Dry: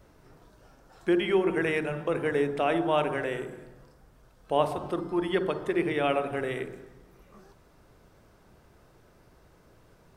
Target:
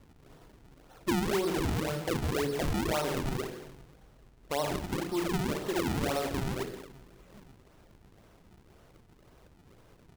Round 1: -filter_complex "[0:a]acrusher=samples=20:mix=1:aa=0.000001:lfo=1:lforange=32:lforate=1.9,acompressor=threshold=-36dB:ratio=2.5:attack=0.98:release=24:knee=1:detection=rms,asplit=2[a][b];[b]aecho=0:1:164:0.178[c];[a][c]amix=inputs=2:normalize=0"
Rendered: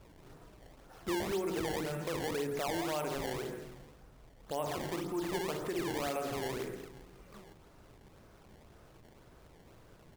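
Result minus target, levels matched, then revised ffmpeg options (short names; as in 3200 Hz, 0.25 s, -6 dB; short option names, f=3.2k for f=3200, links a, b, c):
decimation with a swept rate: distortion -10 dB; compressor: peak gain reduction +4.5 dB
-filter_complex "[0:a]acrusher=samples=46:mix=1:aa=0.000001:lfo=1:lforange=73.6:lforate=1.9,acompressor=threshold=-28dB:ratio=2.5:attack=0.98:release=24:knee=1:detection=rms,asplit=2[a][b];[b]aecho=0:1:164:0.178[c];[a][c]amix=inputs=2:normalize=0"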